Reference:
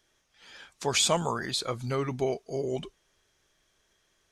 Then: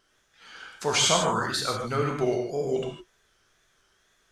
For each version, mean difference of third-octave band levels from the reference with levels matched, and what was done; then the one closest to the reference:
5.5 dB: parametric band 1,400 Hz +7.5 dB 0.48 octaves
tape wow and flutter 110 cents
reverb whose tail is shaped and stops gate 180 ms flat, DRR 0.5 dB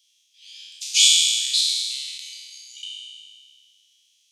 21.0 dB: peak hold with a decay on every bin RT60 1.99 s
Butterworth high-pass 2,700 Hz 48 dB per octave
high-shelf EQ 8,300 Hz −5.5 dB
level +8 dB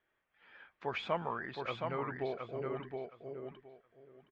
8.0 dB: low-pass filter 2,200 Hz 24 dB per octave
spectral tilt +2 dB per octave
repeating echo 718 ms, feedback 19%, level −4.5 dB
level −6.5 dB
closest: first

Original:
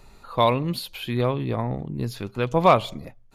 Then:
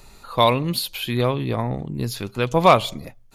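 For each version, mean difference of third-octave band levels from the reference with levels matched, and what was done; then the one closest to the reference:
2.0 dB: high-shelf EQ 3,300 Hz +8.5 dB
level +2 dB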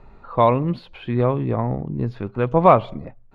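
4.0 dB: low-pass filter 1,600 Hz 12 dB per octave
level +4 dB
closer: first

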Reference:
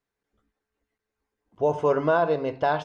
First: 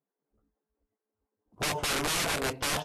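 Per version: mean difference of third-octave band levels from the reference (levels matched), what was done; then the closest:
15.0 dB: wrap-around overflow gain 23 dB
low-pass that shuts in the quiet parts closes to 860 Hz, open at −27.5 dBFS
floating-point word with a short mantissa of 4 bits
level −1 dB
Ogg Vorbis 48 kbit/s 32,000 Hz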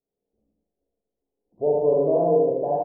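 9.5 dB: inverse Chebyshev low-pass filter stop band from 1,300 Hz, stop band 40 dB
low-shelf EQ 170 Hz −9.5 dB
repeating echo 77 ms, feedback 36%, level −4 dB
four-comb reverb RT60 0.51 s, combs from 32 ms, DRR −2 dB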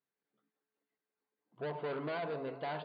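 5.5 dB: soft clipping −26.5 dBFS, distortion −7 dB
on a send: delay with a band-pass on its return 199 ms, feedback 73%, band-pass 630 Hz, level −14 dB
on the sum: brick-wall band-pass 120–4,800 Hz
level −8.5 dB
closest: third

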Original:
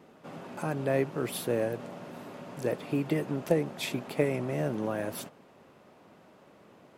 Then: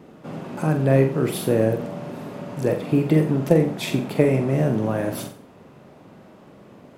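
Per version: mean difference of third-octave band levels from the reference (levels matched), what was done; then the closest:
3.5 dB: low-shelf EQ 330 Hz +9.5 dB
on a send: flutter between parallel walls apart 7.7 metres, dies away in 0.39 s
on the sum: level +4.5 dB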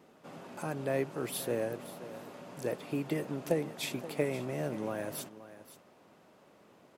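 2.5 dB: bass and treble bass −2 dB, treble +4 dB
single-tap delay 528 ms −15 dB
level −4 dB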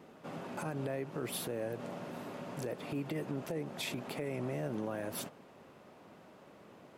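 4.5 dB: downward compressor 4 to 1, threshold −32 dBFS, peak gain reduction 11 dB
brickwall limiter −28 dBFS, peak gain reduction 8 dB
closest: second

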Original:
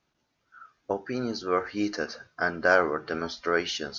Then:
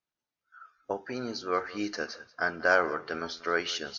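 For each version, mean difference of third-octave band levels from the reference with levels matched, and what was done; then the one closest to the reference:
2.5 dB: noise reduction from a noise print of the clip's start 14 dB
low-shelf EQ 470 Hz −6 dB
on a send: single-tap delay 187 ms −19.5 dB
on the sum: level −1 dB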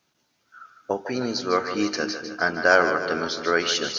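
5.0 dB: high-pass filter 95 Hz
high-shelf EQ 4,000 Hz +9.5 dB
echo with a time of its own for lows and highs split 430 Hz, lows 242 ms, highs 153 ms, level −9 dB
level +3 dB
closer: first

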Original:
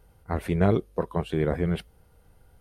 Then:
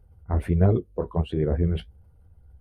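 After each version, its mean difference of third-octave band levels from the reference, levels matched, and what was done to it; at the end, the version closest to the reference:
6.0 dB: spectral envelope exaggerated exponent 1.5
parametric band 70 Hz +10.5 dB 1.1 octaves
flanger 1.4 Hz, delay 7 ms, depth 8.7 ms, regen −37%
level +3 dB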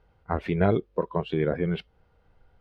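3.5 dB: in parallel at +1.5 dB: downward compressor, threshold −34 dBFS, peak gain reduction 16.5 dB
on the sum: high-frequency loss of the air 230 metres
noise reduction from a noise print of the clip's start 9 dB
low-shelf EQ 490 Hz −7 dB
level +3 dB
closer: second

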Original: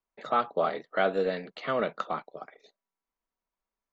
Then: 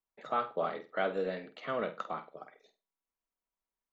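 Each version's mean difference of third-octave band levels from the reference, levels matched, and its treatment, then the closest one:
1.5 dB: parametric band 4,400 Hz −5 dB 0.37 octaves
on a send: flutter between parallel walls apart 8.3 metres, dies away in 0.27 s
on the sum: level −6 dB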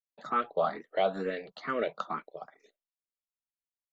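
2.5 dB: noise gate with hold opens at −51 dBFS
frequency shifter mixed with the dry sound +2.2 Hz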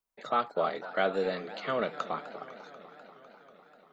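4.0 dB: high-shelf EQ 5,500 Hz +9.5 dB
feedback echo with a swinging delay time 247 ms, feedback 77%, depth 212 cents, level −16 dB
level −2.5 dB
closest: first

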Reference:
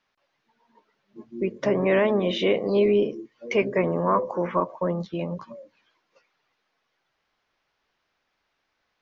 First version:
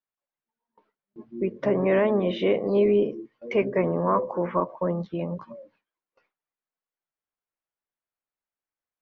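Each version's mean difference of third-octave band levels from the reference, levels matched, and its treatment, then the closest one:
1.0 dB: high-shelf EQ 3,400 Hz −11.5 dB
noise gate with hold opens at −49 dBFS
high-frequency loss of the air 71 metres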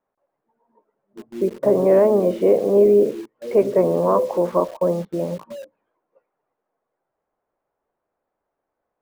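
6.5 dB: low-pass filter 1,000 Hz 12 dB per octave
parametric band 540 Hz +8.5 dB 1.8 octaves
in parallel at −4 dB: bit reduction 6 bits
on the sum: level −4.5 dB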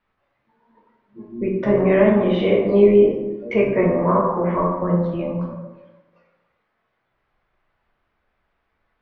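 4.5 dB: low-pass filter 2,300 Hz 12 dB per octave
low-shelf EQ 120 Hz +11.5 dB
dense smooth reverb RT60 1.1 s, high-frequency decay 0.55×, DRR −2 dB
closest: first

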